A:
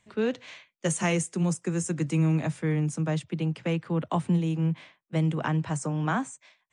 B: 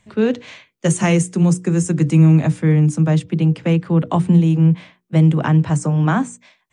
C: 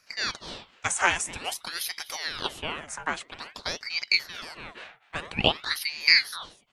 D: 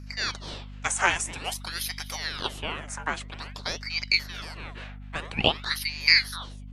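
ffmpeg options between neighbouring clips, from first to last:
-af "lowshelf=f=330:g=8.5,bandreject=f=60:t=h:w=6,bandreject=f=120:t=h:w=6,bandreject=f=180:t=h:w=6,bandreject=f=240:t=h:w=6,bandreject=f=300:t=h:w=6,bandreject=f=360:t=h:w=6,bandreject=f=420:t=h:w=6,bandreject=f=480:t=h:w=6,volume=2.11"
-af "highpass=f=1200:t=q:w=4.6,aecho=1:1:249:0.1,aeval=exprs='val(0)*sin(2*PI*1900*n/s+1900*0.85/0.5*sin(2*PI*0.5*n/s))':c=same,volume=0.891"
-af "aeval=exprs='val(0)+0.01*(sin(2*PI*50*n/s)+sin(2*PI*2*50*n/s)/2+sin(2*PI*3*50*n/s)/3+sin(2*PI*4*50*n/s)/4+sin(2*PI*5*50*n/s)/5)':c=same"

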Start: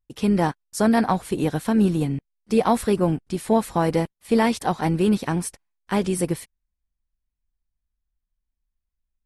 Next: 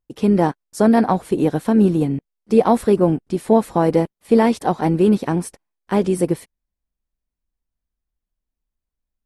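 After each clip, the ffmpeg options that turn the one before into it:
-af "equalizer=f=390:w=0.42:g=9.5,volume=0.708"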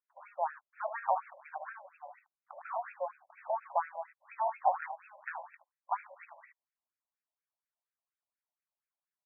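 -af "aecho=1:1:19|55|73:0.178|0.188|0.299,acompressor=threshold=0.0891:ratio=6,afftfilt=real='re*between(b*sr/1024,740*pow(1900/740,0.5+0.5*sin(2*PI*4.2*pts/sr))/1.41,740*pow(1900/740,0.5+0.5*sin(2*PI*4.2*pts/sr))*1.41)':imag='im*between(b*sr/1024,740*pow(1900/740,0.5+0.5*sin(2*PI*4.2*pts/sr))/1.41,740*pow(1900/740,0.5+0.5*sin(2*PI*4.2*pts/sr))*1.41)':win_size=1024:overlap=0.75"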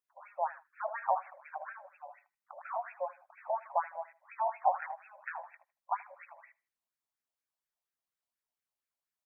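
-af "aecho=1:1:79|158:0.0708|0.0262"

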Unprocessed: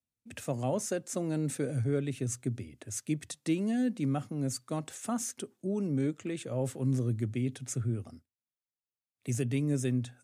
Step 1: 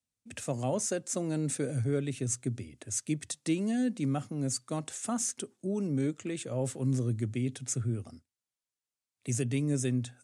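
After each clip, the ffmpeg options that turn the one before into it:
-af "lowpass=f=9500:w=0.5412,lowpass=f=9500:w=1.3066,highshelf=f=6700:g=10"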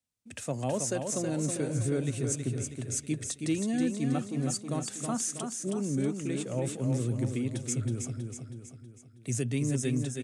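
-af "aecho=1:1:321|642|963|1284|1605|1926:0.531|0.26|0.127|0.0625|0.0306|0.015,asoftclip=type=hard:threshold=0.1"

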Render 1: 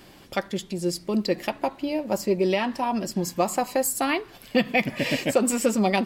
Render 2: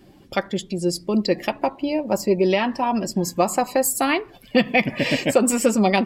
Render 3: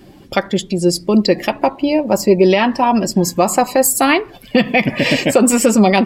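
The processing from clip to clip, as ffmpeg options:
-af "afftdn=nr=13:nf=-45,volume=1.58"
-af "alimiter=level_in=2.82:limit=0.891:release=50:level=0:latency=1,volume=0.891"

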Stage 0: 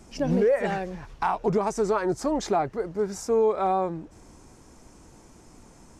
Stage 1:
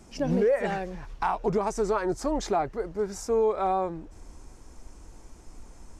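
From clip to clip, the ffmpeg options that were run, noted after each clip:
-af "asubboost=boost=5.5:cutoff=59,volume=0.841"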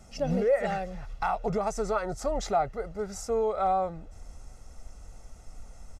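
-af "aecho=1:1:1.5:0.66,volume=0.75"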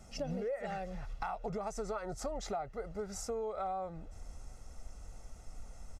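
-af "acompressor=threshold=0.0224:ratio=5,volume=0.75"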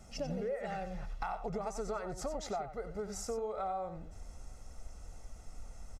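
-af "aecho=1:1:92:0.299"

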